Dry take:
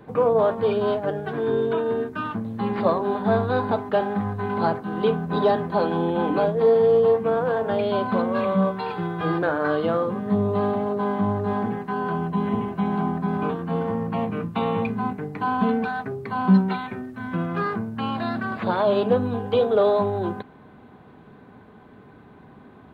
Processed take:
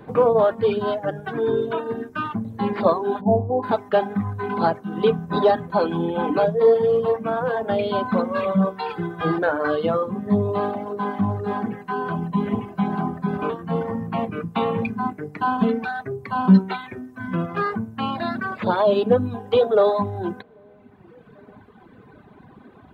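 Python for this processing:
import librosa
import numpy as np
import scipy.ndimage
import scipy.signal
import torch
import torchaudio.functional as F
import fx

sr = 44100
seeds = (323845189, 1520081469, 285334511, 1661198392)

y = fx.steep_lowpass(x, sr, hz=880.0, slope=48, at=(3.2, 3.62), fade=0.02)
y = fx.echo_wet_lowpass(y, sr, ms=791, feedback_pct=37, hz=560.0, wet_db=-21.5)
y = fx.dereverb_blind(y, sr, rt60_s=2.0)
y = y * 10.0 ** (3.5 / 20.0)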